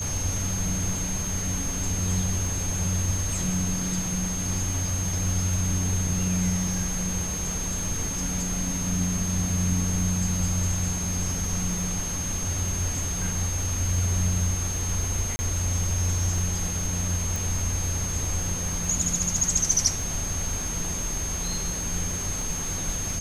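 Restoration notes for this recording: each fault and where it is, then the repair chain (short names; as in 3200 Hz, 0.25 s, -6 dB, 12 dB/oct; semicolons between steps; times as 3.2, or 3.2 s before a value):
crackle 27/s -33 dBFS
tone 6400 Hz -30 dBFS
15.36–15.39 gap 30 ms
17.36 pop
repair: de-click; notch 6400 Hz, Q 30; interpolate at 15.36, 30 ms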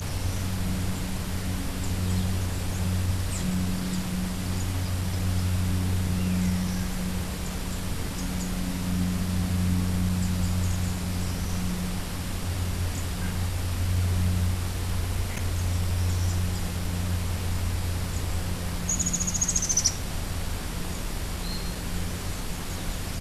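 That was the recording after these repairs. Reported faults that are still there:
none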